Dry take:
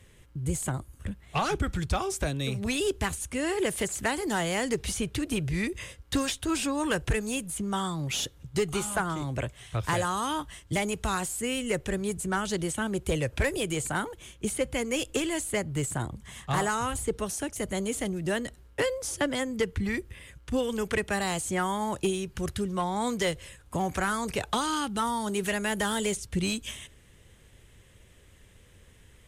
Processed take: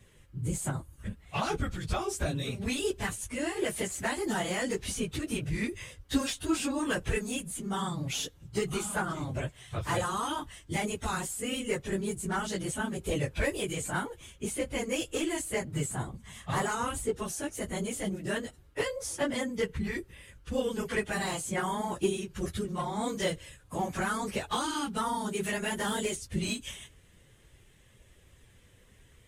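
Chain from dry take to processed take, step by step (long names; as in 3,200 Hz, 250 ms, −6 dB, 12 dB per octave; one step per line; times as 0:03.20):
random phases in long frames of 50 ms
level −3 dB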